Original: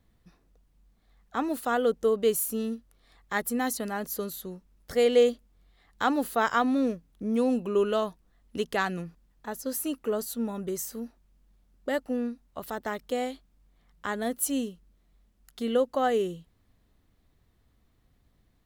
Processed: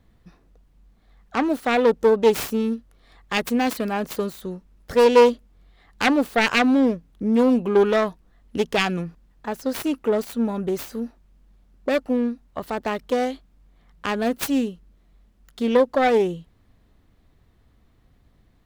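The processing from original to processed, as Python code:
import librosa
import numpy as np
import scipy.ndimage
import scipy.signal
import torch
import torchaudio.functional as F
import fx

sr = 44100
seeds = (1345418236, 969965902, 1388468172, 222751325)

y = fx.self_delay(x, sr, depth_ms=0.34)
y = fx.high_shelf(y, sr, hz=4700.0, db=-7.5)
y = y * librosa.db_to_amplitude(8.0)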